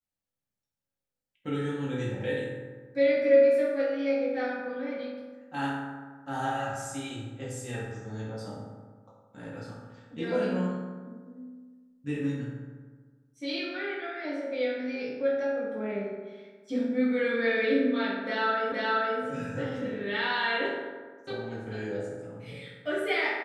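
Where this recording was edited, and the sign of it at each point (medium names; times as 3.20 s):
18.72 s: repeat of the last 0.47 s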